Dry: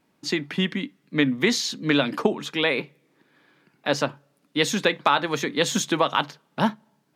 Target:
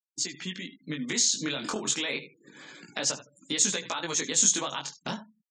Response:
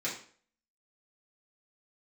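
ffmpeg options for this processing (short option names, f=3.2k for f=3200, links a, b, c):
-filter_complex "[0:a]alimiter=limit=-16.5dB:level=0:latency=1:release=157,asplit=2[a][b];[b]aecho=0:1:103|206:0.15|0.0224[c];[a][c]amix=inputs=2:normalize=0,dynaudnorm=f=580:g=5:m=16dB,highshelf=f=3.7k:g=12,acompressor=threshold=-39dB:ratio=2,lowpass=f=7.3k:t=q:w=4.4,atempo=1.3,flanger=delay=15.5:depth=7.2:speed=0.29,afftfilt=real='re*gte(hypot(re,im),0.00398)':imag='im*gte(hypot(re,im),0.00398)':win_size=1024:overlap=0.75"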